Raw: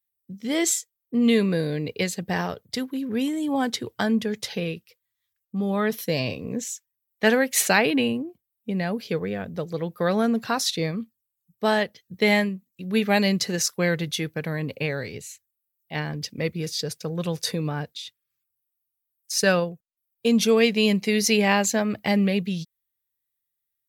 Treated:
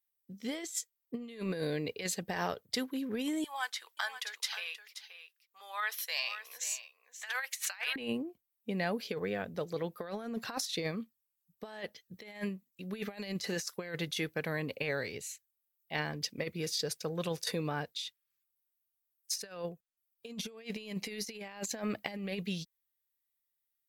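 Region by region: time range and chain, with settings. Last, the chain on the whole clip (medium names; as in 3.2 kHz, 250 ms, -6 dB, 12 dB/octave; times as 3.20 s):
3.44–7.96 s: high-pass 970 Hz 24 dB/octave + delay 529 ms -12 dB
whole clip: peaking EQ 120 Hz -8.5 dB 2.5 oct; compressor with a negative ratio -29 dBFS, ratio -0.5; trim -6.5 dB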